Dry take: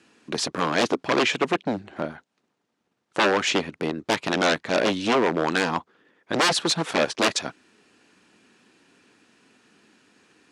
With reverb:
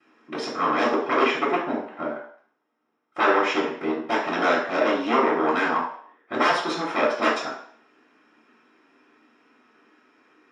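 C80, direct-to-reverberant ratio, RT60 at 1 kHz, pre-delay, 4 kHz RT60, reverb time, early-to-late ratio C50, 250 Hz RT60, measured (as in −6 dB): 8.0 dB, −15.5 dB, 0.60 s, 3 ms, 0.60 s, 0.55 s, 4.5 dB, 0.45 s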